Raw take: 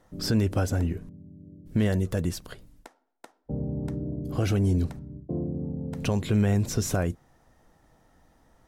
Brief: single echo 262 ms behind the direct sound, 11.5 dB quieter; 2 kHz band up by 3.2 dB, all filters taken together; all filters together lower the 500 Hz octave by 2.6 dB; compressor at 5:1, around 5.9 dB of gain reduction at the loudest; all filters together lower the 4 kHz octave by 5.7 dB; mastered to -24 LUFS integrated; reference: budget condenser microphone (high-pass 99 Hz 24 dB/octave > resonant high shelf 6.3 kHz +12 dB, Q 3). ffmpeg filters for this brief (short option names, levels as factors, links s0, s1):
-af "equalizer=f=500:t=o:g=-3.5,equalizer=f=2000:t=o:g=7,equalizer=f=4000:t=o:g=-5.5,acompressor=threshold=0.0501:ratio=5,highpass=f=99:w=0.5412,highpass=f=99:w=1.3066,highshelf=f=6300:t=q:w=3:g=12,aecho=1:1:262:0.266,volume=2.11"